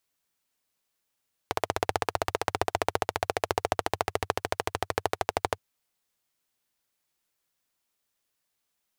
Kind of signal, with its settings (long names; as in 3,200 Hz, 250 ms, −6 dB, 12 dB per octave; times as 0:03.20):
pulse-train model of a single-cylinder engine, changing speed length 4.07 s, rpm 1,900, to 1,500, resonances 96/450/690 Hz